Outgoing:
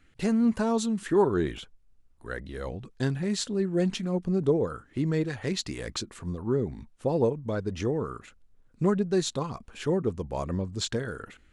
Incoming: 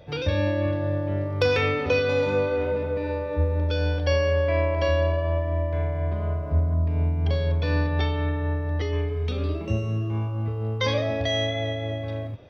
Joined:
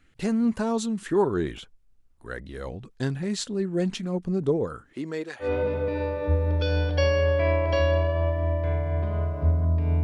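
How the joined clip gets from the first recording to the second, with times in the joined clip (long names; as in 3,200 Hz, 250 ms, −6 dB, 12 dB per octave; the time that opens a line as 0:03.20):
outgoing
0:04.92–0:05.49: high-pass filter 260 Hz → 610 Hz
0:05.44: continue with incoming from 0:02.53, crossfade 0.10 s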